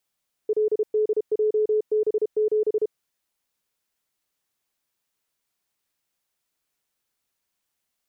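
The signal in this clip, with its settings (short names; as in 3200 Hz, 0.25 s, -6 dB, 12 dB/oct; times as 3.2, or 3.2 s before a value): Morse "LDJB7" 32 wpm 428 Hz -18 dBFS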